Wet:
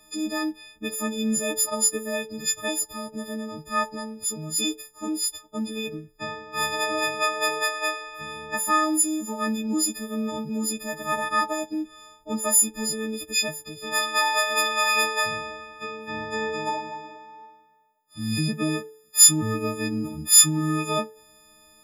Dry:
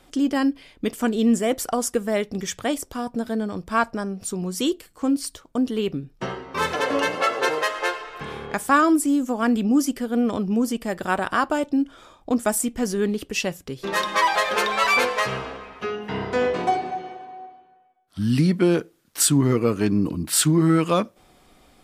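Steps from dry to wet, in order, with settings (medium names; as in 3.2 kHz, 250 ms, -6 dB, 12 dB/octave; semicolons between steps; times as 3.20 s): partials quantised in pitch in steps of 6 st; de-hum 436.8 Hz, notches 38; trim -7 dB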